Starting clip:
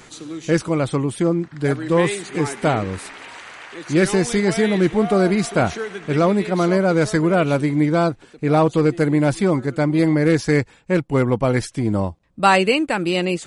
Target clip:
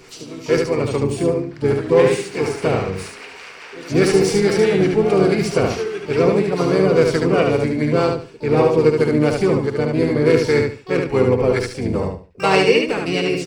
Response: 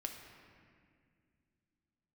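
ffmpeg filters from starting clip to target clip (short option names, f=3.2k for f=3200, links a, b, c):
-filter_complex "[0:a]acrossover=split=460[a][b];[a]aeval=exprs='val(0)*(1-0.5/2+0.5/2*cos(2*PI*4.8*n/s))':c=same[c];[b]aeval=exprs='val(0)*(1-0.5/2-0.5/2*cos(2*PI*4.8*n/s))':c=same[d];[c][d]amix=inputs=2:normalize=0,asplit=4[e][f][g][h];[f]asetrate=22050,aresample=44100,atempo=2,volume=-17dB[i];[g]asetrate=35002,aresample=44100,atempo=1.25992,volume=-5dB[j];[h]asetrate=88200,aresample=44100,atempo=0.5,volume=-15dB[k];[e][i][j][k]amix=inputs=4:normalize=0,superequalizer=7b=2.51:12b=1.78:14b=2,asplit=2[l][m];[m]aecho=0:1:73|146|219:0.631|0.158|0.0394[n];[l][n]amix=inputs=2:normalize=0,volume=-2dB"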